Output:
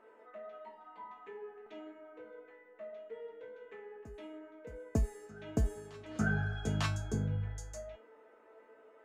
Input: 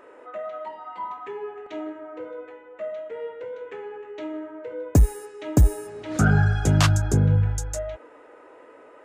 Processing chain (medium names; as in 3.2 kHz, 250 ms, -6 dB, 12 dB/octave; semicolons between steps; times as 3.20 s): low-pass 3.8 kHz 6 dB/octave; feedback comb 220 Hz, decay 0.25 s, harmonics all, mix 90%; on a send: reverse echo 899 ms -22 dB